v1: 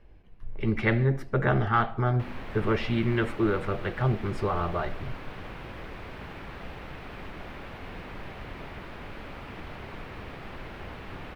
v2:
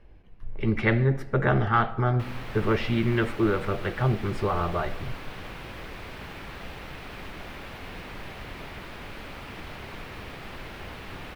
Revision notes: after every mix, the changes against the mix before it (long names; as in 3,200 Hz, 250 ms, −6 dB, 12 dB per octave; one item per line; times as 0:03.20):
speech: send +11.5 dB
background: add high-shelf EQ 3,500 Hz +11 dB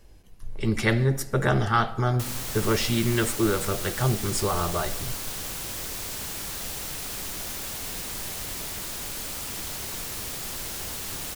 master: remove drawn EQ curve 2,400 Hz 0 dB, 4,400 Hz −13 dB, 7,000 Hz −26 dB